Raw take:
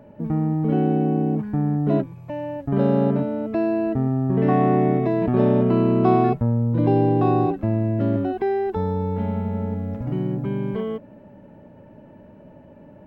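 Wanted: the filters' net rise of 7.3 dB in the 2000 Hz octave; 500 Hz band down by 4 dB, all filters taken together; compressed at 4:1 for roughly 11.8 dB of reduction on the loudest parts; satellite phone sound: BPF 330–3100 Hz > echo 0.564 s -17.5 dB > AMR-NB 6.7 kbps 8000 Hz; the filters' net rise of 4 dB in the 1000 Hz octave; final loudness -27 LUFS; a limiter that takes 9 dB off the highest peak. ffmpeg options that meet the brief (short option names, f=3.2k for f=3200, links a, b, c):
-af "equalizer=f=500:t=o:g=-6.5,equalizer=f=1k:t=o:g=8,equalizer=f=2k:t=o:g=7.5,acompressor=threshold=-28dB:ratio=4,alimiter=level_in=1.5dB:limit=-24dB:level=0:latency=1,volume=-1.5dB,highpass=330,lowpass=3.1k,aecho=1:1:564:0.133,volume=12dB" -ar 8000 -c:a libopencore_amrnb -b:a 6700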